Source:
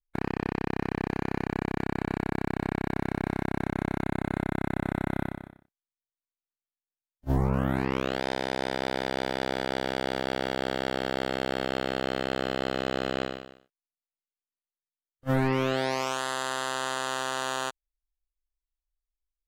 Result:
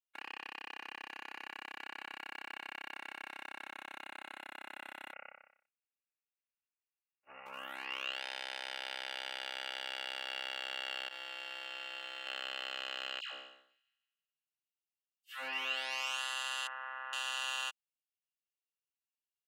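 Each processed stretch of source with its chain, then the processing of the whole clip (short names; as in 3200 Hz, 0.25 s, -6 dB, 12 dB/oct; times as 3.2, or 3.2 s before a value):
5.13–7.46 minimum comb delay 1.4 ms + tube stage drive 22 dB, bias 0.5 + careless resampling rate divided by 8×, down none, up filtered
11.08–12.27 expander -27 dBFS + comb 5.8 ms, depth 66%
13.2–15.65 dispersion lows, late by 0.139 s, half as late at 1200 Hz + thin delay 0.16 s, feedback 47%, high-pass 1600 Hz, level -22.5 dB
16.67–17.13 steep low-pass 2000 Hz + bell 200 Hz -6 dB 2.4 oct
whole clip: HPF 1200 Hz 12 dB/oct; bell 2800 Hz +14.5 dB 0.25 oct; comb 3.6 ms, depth 46%; gain -8 dB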